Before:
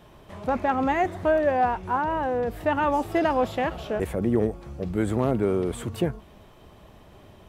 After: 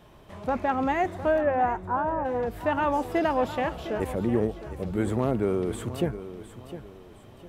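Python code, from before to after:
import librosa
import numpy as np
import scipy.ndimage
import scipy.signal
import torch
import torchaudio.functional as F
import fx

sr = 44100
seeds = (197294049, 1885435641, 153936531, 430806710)

y = fx.lowpass(x, sr, hz=fx.line((1.4, 2900.0), (2.24, 1200.0)), slope=24, at=(1.4, 2.24), fade=0.02)
y = fx.echo_feedback(y, sr, ms=708, feedback_pct=34, wet_db=-13)
y = y * librosa.db_to_amplitude(-2.0)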